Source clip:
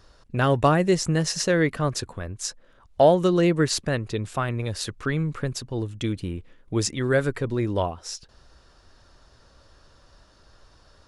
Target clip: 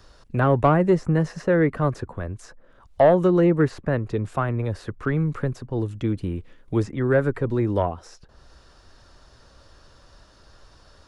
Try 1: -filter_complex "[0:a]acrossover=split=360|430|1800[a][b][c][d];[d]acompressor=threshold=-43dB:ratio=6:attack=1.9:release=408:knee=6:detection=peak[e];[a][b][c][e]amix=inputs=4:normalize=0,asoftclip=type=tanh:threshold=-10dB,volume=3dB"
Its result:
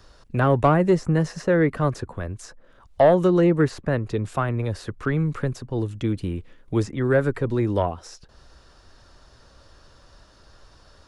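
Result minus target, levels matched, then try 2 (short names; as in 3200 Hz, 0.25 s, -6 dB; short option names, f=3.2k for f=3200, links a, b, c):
compressor: peak gain reduction -6 dB
-filter_complex "[0:a]acrossover=split=360|430|1800[a][b][c][d];[d]acompressor=threshold=-50dB:ratio=6:attack=1.9:release=408:knee=6:detection=peak[e];[a][b][c][e]amix=inputs=4:normalize=0,asoftclip=type=tanh:threshold=-10dB,volume=3dB"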